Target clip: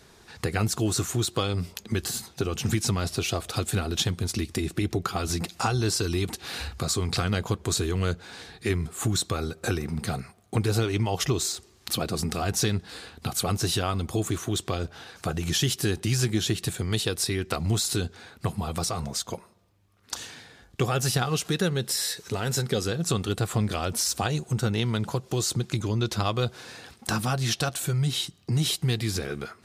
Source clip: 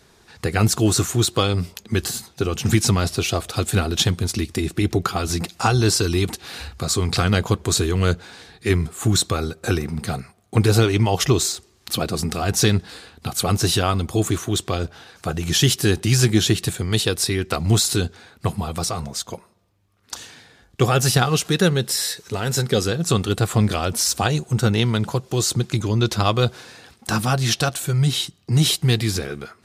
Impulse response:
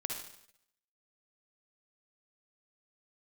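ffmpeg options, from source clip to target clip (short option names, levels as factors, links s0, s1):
-af "acompressor=threshold=0.0398:ratio=2"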